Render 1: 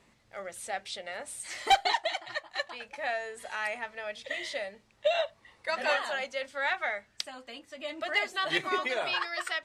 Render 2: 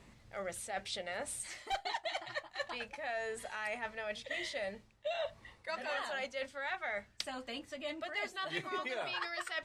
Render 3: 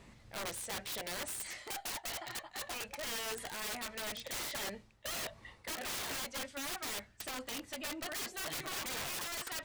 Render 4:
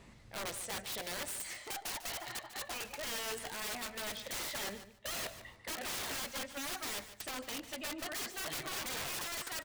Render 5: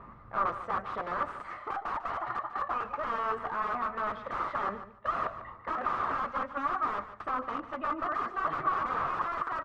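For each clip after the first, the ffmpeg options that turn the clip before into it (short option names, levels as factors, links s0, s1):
-af "lowshelf=f=170:g=10.5,areverse,acompressor=threshold=0.0126:ratio=5,areverse,volume=1.19"
-af "aeval=exprs='(mod(66.8*val(0)+1,2)-1)/66.8':c=same,volume=1.26"
-af "aecho=1:1:147|294:0.224|0.0403"
-af "lowpass=f=1200:t=q:w=8.5,volume=1.68"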